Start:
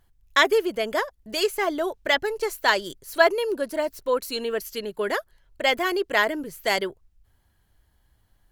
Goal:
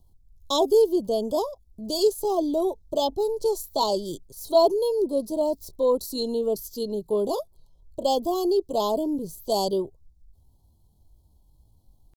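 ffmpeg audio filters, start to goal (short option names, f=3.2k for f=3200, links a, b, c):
-filter_complex "[0:a]atempo=0.7,acrossover=split=340|1300|4800[a][b][c][d];[a]acontrast=55[e];[e][b][c][d]amix=inputs=4:normalize=0,asuperstop=centerf=1900:order=8:qfactor=0.7"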